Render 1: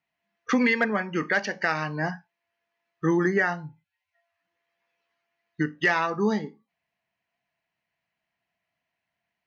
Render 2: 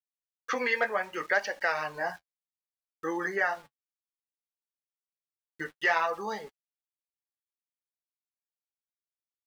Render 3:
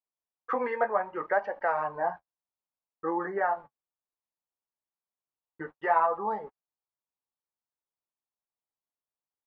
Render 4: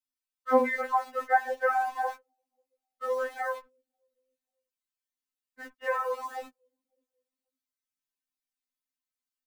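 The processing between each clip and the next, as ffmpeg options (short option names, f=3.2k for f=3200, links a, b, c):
-af "lowshelf=f=360:t=q:w=1.5:g=-14,aeval=exprs='val(0)*gte(abs(val(0)),0.00501)':c=same,flanger=delay=3.5:depth=9.2:regen=-31:speed=0.64:shape=sinusoidal"
-af "lowpass=f=970:t=q:w=2"
-filter_complex "[0:a]acrossover=split=190|330|1100[a][b][c][d];[b]aecho=1:1:541|1082:0.0708|0.0234[e];[c]aeval=exprs='val(0)*gte(abs(val(0)),0.00562)':c=same[f];[a][e][f][d]amix=inputs=4:normalize=0,afftfilt=real='re*3.46*eq(mod(b,12),0)':imag='im*3.46*eq(mod(b,12),0)':win_size=2048:overlap=0.75,volume=4dB"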